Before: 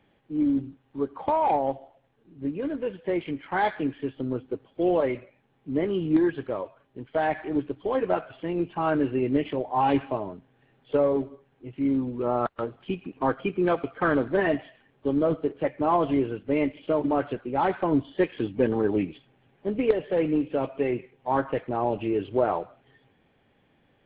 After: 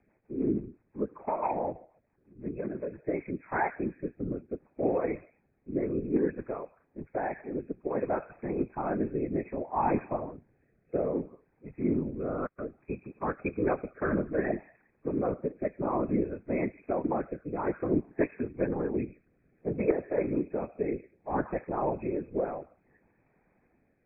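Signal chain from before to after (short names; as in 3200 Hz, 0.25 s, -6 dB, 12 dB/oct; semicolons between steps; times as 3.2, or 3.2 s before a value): whisperiser; brick-wall FIR low-pass 2600 Hz; rotary speaker horn 6 Hz, later 0.6 Hz, at 2.78; gain -3.5 dB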